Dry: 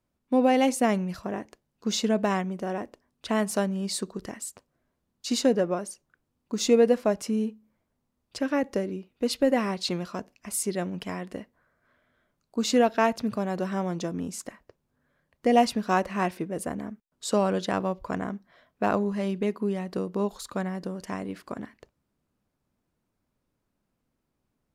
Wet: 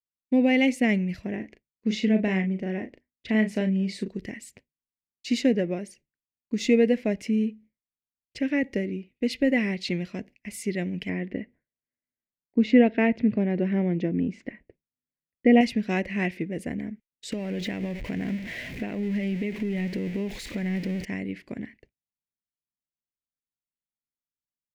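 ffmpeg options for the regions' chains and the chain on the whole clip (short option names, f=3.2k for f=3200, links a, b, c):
-filter_complex "[0:a]asettb=1/sr,asplit=3[a][b][c];[a]atrim=end=1.364[d];[b]atrim=start=1.36:end=4.08,asetpts=PTS-STARTPTS,afade=t=in:d=0.004:c=qsin,afade=t=out:st=2.716:d=0.004:c=qsin,lowpass=f=3.6k:p=1,asplit=2[e][f];[f]adelay=37,volume=-8dB[g];[e][g]amix=inputs=2:normalize=0,atrim=end_sample=119952[h];[c]atrim=start=4.076[i];[d][h]acrossfade=d=0.004:c1=hsin:c2=qsin[j];[j][i]acrossfade=d=0.004:c1=qsin:c2=hsin,asettb=1/sr,asplit=3[k][l][m];[k]atrim=end=11.094[n];[l]atrim=start=11.09:end=15.61,asetpts=PTS-STARTPTS,afade=t=in:d=0.004:c=qsin,afade=t=out:st=4.516:d=0.004:c=qsin,lowpass=2.7k,equalizer=f=330:w=0.68:g=5[o];[m]atrim=start=15.606[p];[n][o]acrossfade=d=0.004:c1=hsin:c2=qsin[q];[q][p]acrossfade=d=0.004:c1=qsin:c2=hsin,asettb=1/sr,asplit=3[r][s][t];[r]atrim=end=17.324[u];[s]atrim=start=17.32:end=21.05,asetpts=PTS-STARTPTS,afade=t=in:d=0.004:c=qsin,afade=t=out:st=3.726:d=0.004:c=qsin,aeval=exprs='val(0)+0.5*0.0237*sgn(val(0))':c=same,acompressor=threshold=-26dB:ratio=12:attack=3.2:release=140:knee=1:detection=peak[v];[t]atrim=start=21.046[w];[u][v]acrossfade=d=0.004:c1=hsin:c2=qsin[x];[x][w]acrossfade=d=0.004:c1=qsin:c2=hsin,agate=range=-33dB:threshold=-46dB:ratio=3:detection=peak,firequalizer=gain_entry='entry(250,0);entry(1200,-22);entry(2000,7);entry(3600,-6);entry(8900,-14)':delay=0.05:min_phase=1,volume=3dB"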